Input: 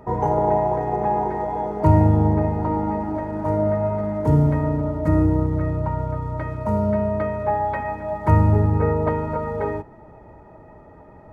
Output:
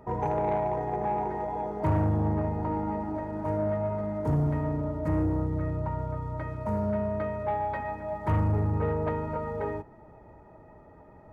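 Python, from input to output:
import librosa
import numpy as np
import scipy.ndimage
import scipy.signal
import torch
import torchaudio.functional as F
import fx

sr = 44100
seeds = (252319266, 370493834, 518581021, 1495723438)

y = 10.0 ** (-13.0 / 20.0) * np.tanh(x / 10.0 ** (-13.0 / 20.0))
y = y * 10.0 ** (-6.5 / 20.0)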